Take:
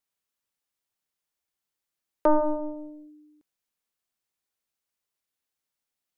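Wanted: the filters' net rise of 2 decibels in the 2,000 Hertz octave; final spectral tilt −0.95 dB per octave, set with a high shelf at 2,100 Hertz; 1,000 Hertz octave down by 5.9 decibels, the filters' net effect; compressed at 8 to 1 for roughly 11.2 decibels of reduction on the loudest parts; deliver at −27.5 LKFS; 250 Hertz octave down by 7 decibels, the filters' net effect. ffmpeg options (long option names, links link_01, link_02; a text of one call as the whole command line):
ffmpeg -i in.wav -af "equalizer=frequency=250:width_type=o:gain=-9,equalizer=frequency=1000:width_type=o:gain=-8,equalizer=frequency=2000:width_type=o:gain=5.5,highshelf=frequency=2100:gain=4.5,acompressor=threshold=-31dB:ratio=8,volume=13dB" out.wav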